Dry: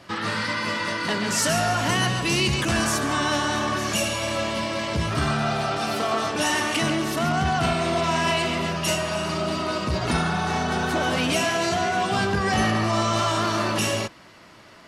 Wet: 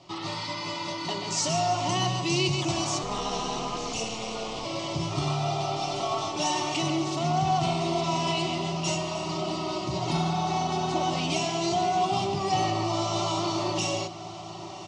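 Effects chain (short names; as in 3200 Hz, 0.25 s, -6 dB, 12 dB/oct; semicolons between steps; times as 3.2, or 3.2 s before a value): steep low-pass 7300 Hz 36 dB/oct; fixed phaser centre 320 Hz, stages 8; comb 5.4 ms, depth 41%; 3.02–4.65 ring modulator 110 Hz; on a send: diffused feedback echo 1.162 s, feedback 68%, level -15 dB; on the sum: gain -2 dB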